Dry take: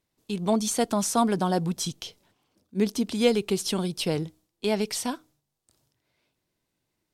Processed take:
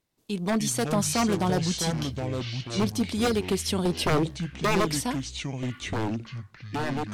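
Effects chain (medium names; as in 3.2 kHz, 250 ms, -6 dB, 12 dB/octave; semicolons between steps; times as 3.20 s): 3.85–4.88 s: peaking EQ 400 Hz +11 dB 2.1 oct; wavefolder -18 dBFS; ever faster or slower copies 179 ms, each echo -6 st, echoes 3, each echo -6 dB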